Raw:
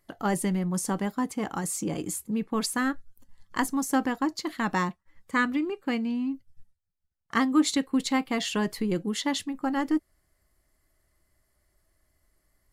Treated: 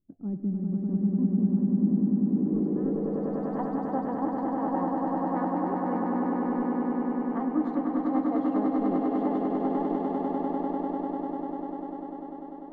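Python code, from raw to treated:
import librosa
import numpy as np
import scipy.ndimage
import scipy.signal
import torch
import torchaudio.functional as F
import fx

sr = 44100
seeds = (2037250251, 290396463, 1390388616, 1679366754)

y = fx.echo_swell(x, sr, ms=99, loudest=8, wet_db=-4.0)
y = fx.filter_sweep_lowpass(y, sr, from_hz=250.0, to_hz=710.0, start_s=2.24, end_s=3.6, q=2.5)
y = F.gain(torch.from_numpy(y), -8.5).numpy()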